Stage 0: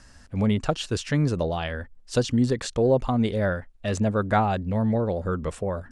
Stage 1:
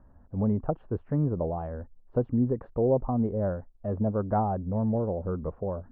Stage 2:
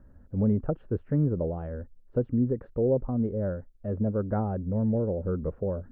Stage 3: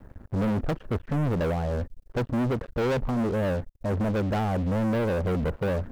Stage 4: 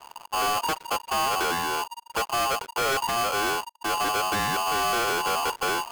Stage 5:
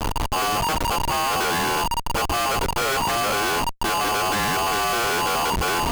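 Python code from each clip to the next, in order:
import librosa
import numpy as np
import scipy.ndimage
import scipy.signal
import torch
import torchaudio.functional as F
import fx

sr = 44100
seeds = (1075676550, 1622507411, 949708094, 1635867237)

y1 = scipy.signal.sosfilt(scipy.signal.butter(4, 1000.0, 'lowpass', fs=sr, output='sos'), x)
y1 = y1 * librosa.db_to_amplitude(-3.5)
y2 = fx.band_shelf(y1, sr, hz=880.0, db=-9.0, octaves=1.0)
y2 = fx.rider(y2, sr, range_db=4, speed_s=2.0)
y3 = fx.leveller(y2, sr, passes=5)
y3 = y3 * librosa.db_to_amplitude(-7.5)
y4 = y3 * np.sign(np.sin(2.0 * np.pi * 940.0 * np.arange(len(y3)) / sr))
y5 = fx.law_mismatch(y4, sr, coded='A')
y5 = fx.schmitt(y5, sr, flips_db=-52.0)
y5 = y5 * librosa.db_to_amplitude(5.5)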